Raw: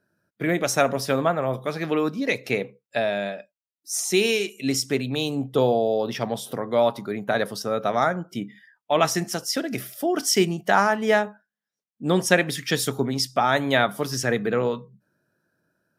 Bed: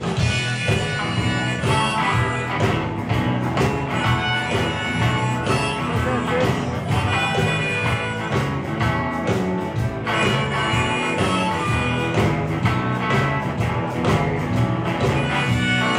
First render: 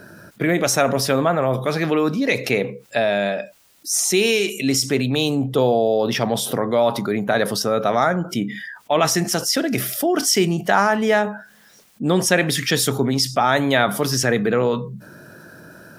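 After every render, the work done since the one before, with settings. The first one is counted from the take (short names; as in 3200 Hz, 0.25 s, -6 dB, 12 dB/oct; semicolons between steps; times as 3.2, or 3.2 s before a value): fast leveller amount 50%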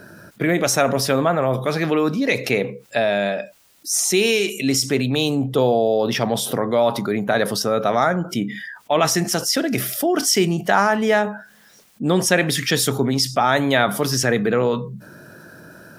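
nothing audible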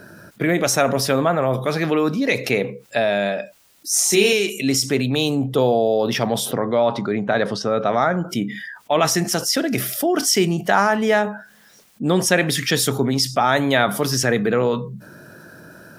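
3.89–4.33 doubler 29 ms -3 dB; 6.51–8.14 air absorption 110 m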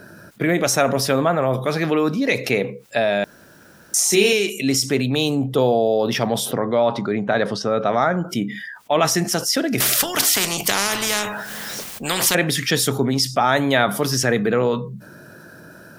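3.24–3.94 room tone; 9.8–12.35 spectral compressor 4:1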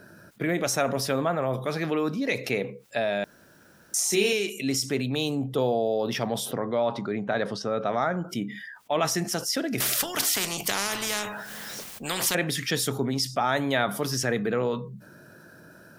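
gain -7.5 dB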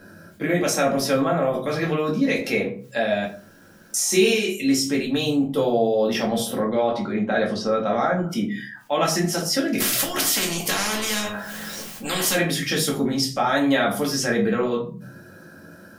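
shoebox room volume 200 m³, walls furnished, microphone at 2.2 m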